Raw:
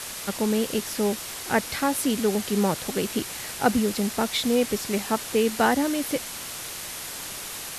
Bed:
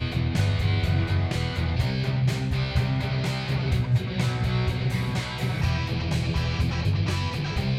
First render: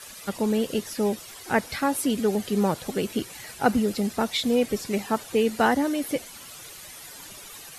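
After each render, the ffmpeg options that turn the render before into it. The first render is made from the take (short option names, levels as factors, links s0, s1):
-af "afftdn=nr=12:nf=-36"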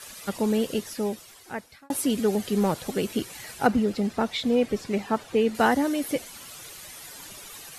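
-filter_complex "[0:a]asettb=1/sr,asplit=3[s0][s1][s2];[s0]atrim=end=2.474[s3];[s1]atrim=start=2.47:end=2.92,asetpts=PTS-STARTPTS,afade=t=in:d=0.004:c=qsin,afade=t=out:st=0.446:d=0.004:c=qsin,asoftclip=type=hard:threshold=0.15[s4];[s2]atrim=start=2.916[s5];[s3][s4]acrossfade=d=0.004:c1=hsin:c2=qsin[s6];[s6][s5]acrossfade=d=0.004:c1=qsin:c2=hsin,asettb=1/sr,asplit=3[s7][s8][s9];[s7]atrim=end=3.674[s10];[s8]atrim=start=3.67:end=5.55,asetpts=PTS-STARTPTS,afade=t=in:d=0.004:c=qsin,afade=t=out:st=1.876:d=0.004:c=qsin,aemphasis=mode=reproduction:type=50kf[s11];[s9]atrim=start=5.546[s12];[s10][s11]acrossfade=d=0.004:c1=hsin:c2=qsin[s13];[s13][s12]acrossfade=d=0.004:c1=qsin:c2=hsin,asplit=2[s14][s15];[s14]atrim=end=1.9,asetpts=PTS-STARTPTS,afade=t=out:st=0.63:d=1.27[s16];[s15]atrim=start=1.9,asetpts=PTS-STARTPTS,afade=t=in:d=0.004:c=hsin[s17];[s16][s17]concat=n=2:v=0:a=1"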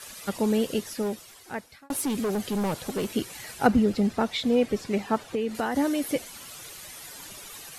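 -filter_complex "[0:a]asettb=1/sr,asplit=3[s0][s1][s2];[s0]atrim=end=1.024[s3];[s1]atrim=start=1.02:end=3.06,asetpts=PTS-STARTPTS,afade=t=in:d=0.004:c=qsin,afade=t=out:st=2.036:d=0.004:c=qsin,volume=15.8,asoftclip=hard,volume=0.0631[s4];[s2]atrim=start=3.056[s5];[s3][s4]acrossfade=d=0.004:c1=hsin:c2=qsin[s6];[s6][s5]acrossfade=d=0.004:c1=qsin:c2=hsin,asettb=1/sr,asplit=3[s7][s8][s9];[s7]atrim=end=3.654[s10];[s8]atrim=start=3.65:end=4.15,asetpts=PTS-STARTPTS,afade=t=in:d=0.004:c=qsin,afade=t=out:st=0.496:d=0.004:c=qsin,lowshelf=f=160:g=7[s11];[s9]atrim=start=4.146[s12];[s10][s11]acrossfade=d=0.004:c1=hsin:c2=qsin[s13];[s13][s12]acrossfade=d=0.004:c1=qsin:c2=hsin,asplit=3[s14][s15][s16];[s14]afade=t=out:st=5.26:d=0.02[s17];[s15]acompressor=threshold=0.0708:ratio=10:attack=3.2:release=140:knee=1:detection=peak,afade=t=in:st=5.26:d=0.02,afade=t=out:st=5.74:d=0.02[s18];[s16]afade=t=in:st=5.74:d=0.02[s19];[s17][s18][s19]amix=inputs=3:normalize=0"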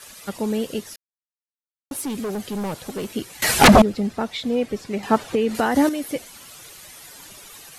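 -filter_complex "[0:a]asettb=1/sr,asplit=3[s0][s1][s2];[s0]atrim=end=3.424[s3];[s1]atrim=start=3.42:end=3.82,asetpts=PTS-STARTPTS,afade=t=in:d=0.004:c=qsin,afade=t=out:st=0.396:d=0.004:c=qsin,aeval=exprs='0.531*sin(PI/2*7.08*val(0)/0.531)':c=same[s4];[s2]atrim=start=3.816[s5];[s3][s4]acrossfade=d=0.004:c1=hsin:c2=qsin[s6];[s6][s5]acrossfade=d=0.004:c1=qsin:c2=hsin,asplit=5[s7][s8][s9][s10][s11];[s7]atrim=end=0.96,asetpts=PTS-STARTPTS,afade=t=out:st=0.956:d=0.004:c=hsin[s12];[s8]atrim=start=0.96:end=1.91,asetpts=PTS-STARTPTS,volume=0[s13];[s9]atrim=start=1.91:end=5.032,asetpts=PTS-STARTPTS,afade=t=in:d=0.004:c=hsin[s14];[s10]atrim=start=5.028:end=5.892,asetpts=PTS-STARTPTS,volume=2.37[s15];[s11]atrim=start=5.888[s16];[s12][s13][s14]concat=n=3:v=0:a=1[s17];[s17][s15]acrossfade=d=0.004:c1=hsin:c2=hsin[s18];[s18][s16]acrossfade=d=0.004:c1=hsin:c2=hsin"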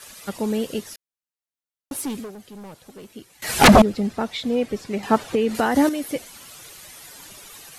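-filter_complex "[0:a]asplit=3[s0][s1][s2];[s0]atrim=end=2.32,asetpts=PTS-STARTPTS,afade=t=out:st=2.08:d=0.24:silence=0.237137[s3];[s1]atrim=start=2.32:end=3.43,asetpts=PTS-STARTPTS,volume=0.237[s4];[s2]atrim=start=3.43,asetpts=PTS-STARTPTS,afade=t=in:d=0.24:silence=0.237137[s5];[s3][s4][s5]concat=n=3:v=0:a=1"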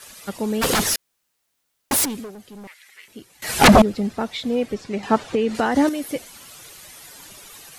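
-filter_complex "[0:a]asplit=3[s0][s1][s2];[s0]afade=t=out:st=0.61:d=0.02[s3];[s1]aeval=exprs='0.178*sin(PI/2*6.31*val(0)/0.178)':c=same,afade=t=in:st=0.61:d=0.02,afade=t=out:st=2.04:d=0.02[s4];[s2]afade=t=in:st=2.04:d=0.02[s5];[s3][s4][s5]amix=inputs=3:normalize=0,asettb=1/sr,asplit=3[s6][s7][s8];[s6]atrim=end=2.674[s9];[s7]atrim=start=2.67:end=3.08,asetpts=PTS-STARTPTS,afade=t=in:d=0.004:c=qsin,afade=t=out:st=0.406:d=0.004:c=qsin,highpass=f=2000:t=q:w=7[s10];[s8]atrim=start=3.076[s11];[s9][s10]acrossfade=d=0.004:c1=hsin:c2=qsin[s12];[s12][s11]acrossfade=d=0.004:c1=qsin:c2=hsin,asettb=1/sr,asplit=3[s13][s14][s15];[s13]atrim=end=4.744[s16];[s14]atrim=start=4.74:end=5.88,asetpts=PTS-STARTPTS,afade=t=in:d=0.004:c=qsin,afade=t=out:st=1.136:d=0.004:c=qsin,lowpass=7900[s17];[s15]atrim=start=5.876[s18];[s16][s17]acrossfade=d=0.004:c1=hsin:c2=qsin[s19];[s19][s18]acrossfade=d=0.004:c1=qsin:c2=hsin"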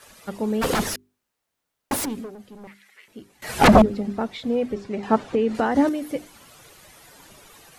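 -af "highshelf=f=2100:g=-9.5,bandreject=f=50:t=h:w=6,bandreject=f=100:t=h:w=6,bandreject=f=150:t=h:w=6,bandreject=f=200:t=h:w=6,bandreject=f=250:t=h:w=6,bandreject=f=300:t=h:w=6,bandreject=f=350:t=h:w=6,bandreject=f=400:t=h:w=6"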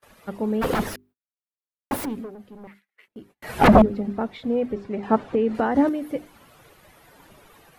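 -af "agate=range=0.0398:threshold=0.00316:ratio=16:detection=peak,equalizer=f=6900:w=0.54:g=-11.5"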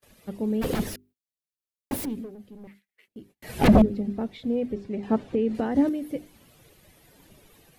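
-af "equalizer=f=1100:w=0.7:g=-11.5,bandreject=f=1400:w=25"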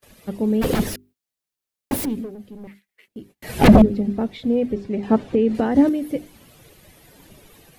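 -af "volume=2.11,alimiter=limit=0.794:level=0:latency=1"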